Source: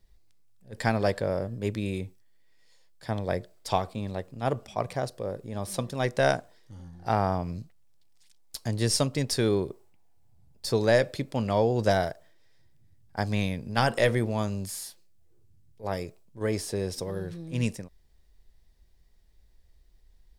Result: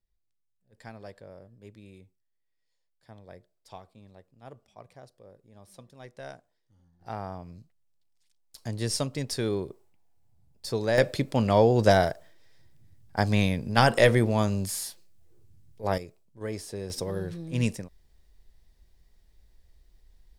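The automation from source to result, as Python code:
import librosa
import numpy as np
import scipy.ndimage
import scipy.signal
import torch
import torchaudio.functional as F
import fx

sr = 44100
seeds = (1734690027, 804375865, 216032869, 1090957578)

y = fx.gain(x, sr, db=fx.steps((0.0, -19.0), (7.01, -11.0), (8.58, -4.0), (10.98, 4.0), (15.98, -6.0), (16.9, 1.5)))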